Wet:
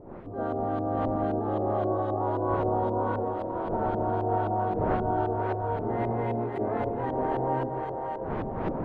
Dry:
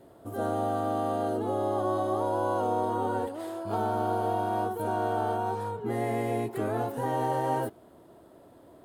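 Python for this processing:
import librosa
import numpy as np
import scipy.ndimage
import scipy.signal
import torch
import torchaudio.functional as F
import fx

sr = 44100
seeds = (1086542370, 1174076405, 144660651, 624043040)

y = fx.dmg_wind(x, sr, seeds[0], corner_hz=590.0, level_db=-38.0)
y = fx.echo_split(y, sr, split_hz=360.0, low_ms=144, high_ms=587, feedback_pct=52, wet_db=-4.0)
y = fx.filter_lfo_lowpass(y, sr, shape='saw_up', hz=3.8, low_hz=500.0, high_hz=3100.0, q=0.95)
y = y * 10.0 ** (-1.5 / 20.0)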